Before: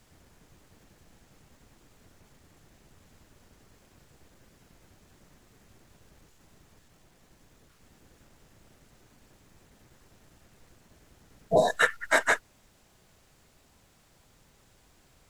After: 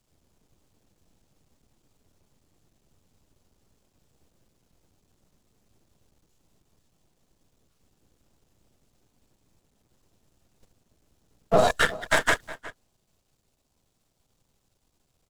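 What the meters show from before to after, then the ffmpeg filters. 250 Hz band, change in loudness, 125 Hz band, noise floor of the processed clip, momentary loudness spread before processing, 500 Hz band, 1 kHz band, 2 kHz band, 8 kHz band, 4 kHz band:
+4.0 dB, +1.0 dB, +5.0 dB, −73 dBFS, 5 LU, +2.0 dB, +2.5 dB, +0.5 dB, +2.5 dB, +5.0 dB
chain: -filter_complex "[0:a]aeval=exprs='if(lt(val(0),0),0.251*val(0),val(0))':channel_layout=same,agate=range=-15dB:threshold=-52dB:ratio=16:detection=peak,acrossover=split=180|2100[link_01][link_02][link_03];[link_02]adynamicsmooth=sensitivity=5.5:basefreq=1600[link_04];[link_01][link_04][link_03]amix=inputs=3:normalize=0,asplit=2[link_05][link_06];[link_06]adelay=361.5,volume=-20dB,highshelf=frequency=4000:gain=-8.13[link_07];[link_05][link_07]amix=inputs=2:normalize=0,alimiter=level_in=16dB:limit=-1dB:release=50:level=0:latency=1,volume=-7.5dB"

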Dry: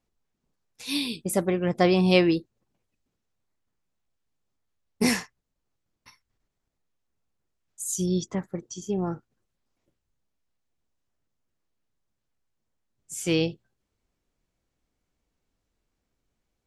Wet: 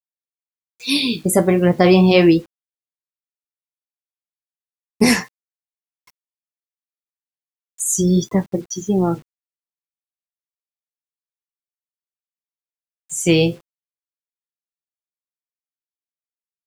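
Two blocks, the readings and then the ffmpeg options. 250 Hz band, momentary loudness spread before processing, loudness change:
+9.5 dB, 15 LU, +9.0 dB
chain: -filter_complex "[0:a]afftdn=noise_reduction=21:noise_floor=-40,adynamicequalizer=threshold=0.00562:dfrequency=6000:dqfactor=0.85:tfrequency=6000:tqfactor=0.85:attack=5:release=100:ratio=0.375:range=2.5:mode=cutabove:tftype=bell,asplit=2[link_01][link_02];[link_02]acompressor=threshold=-29dB:ratio=20,volume=-2dB[link_03];[link_01][link_03]amix=inputs=2:normalize=0,flanger=delay=8.4:depth=9.3:regen=-57:speed=0.34:shape=sinusoidal,acrusher=bits=9:mix=0:aa=0.000001,alimiter=level_in=13dB:limit=-1dB:release=50:level=0:latency=1,volume=-1dB"

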